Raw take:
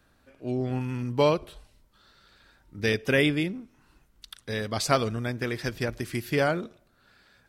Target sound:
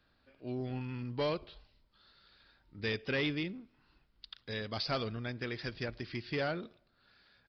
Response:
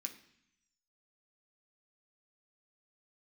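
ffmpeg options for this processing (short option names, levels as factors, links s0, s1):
-af "highshelf=f=3600:g=10,aresample=11025,asoftclip=type=tanh:threshold=0.126,aresample=44100,volume=0.376"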